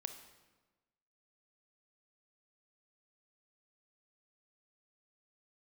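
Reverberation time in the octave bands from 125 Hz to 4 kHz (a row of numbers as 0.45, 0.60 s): 1.3, 1.3, 1.3, 1.2, 1.1, 0.95 s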